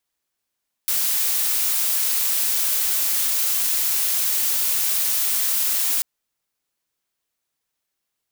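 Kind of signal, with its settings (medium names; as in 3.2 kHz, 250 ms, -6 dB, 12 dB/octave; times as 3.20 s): noise blue, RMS -21 dBFS 5.14 s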